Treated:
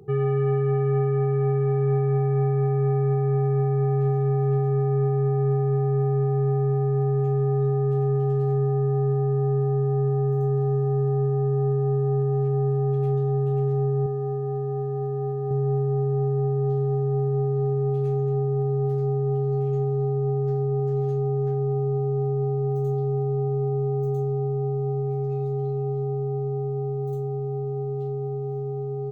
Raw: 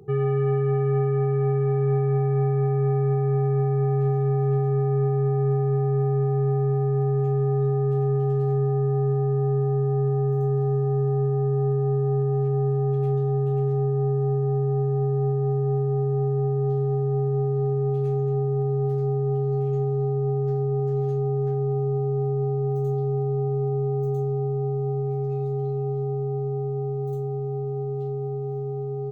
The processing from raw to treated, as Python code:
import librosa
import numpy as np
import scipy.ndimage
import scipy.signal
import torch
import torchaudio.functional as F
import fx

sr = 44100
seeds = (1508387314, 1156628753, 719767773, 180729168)

y = fx.low_shelf(x, sr, hz=250.0, db=-8.0, at=(14.06, 15.51))